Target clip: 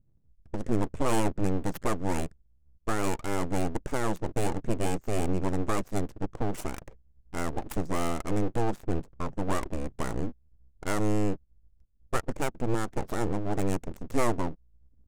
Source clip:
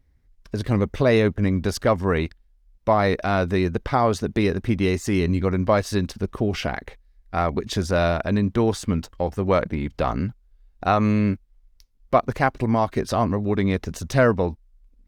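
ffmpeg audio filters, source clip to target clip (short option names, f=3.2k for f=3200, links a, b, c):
-af "adynamicsmooth=sensitivity=5.5:basefreq=540,equalizer=f=125:t=o:w=1:g=3,equalizer=f=1k:t=o:w=1:g=-10,equalizer=f=2k:t=o:w=1:g=-5,equalizer=f=4k:t=o:w=1:g=-8,equalizer=f=8k:t=o:w=1:g=11,aeval=exprs='abs(val(0))':c=same,volume=-4dB"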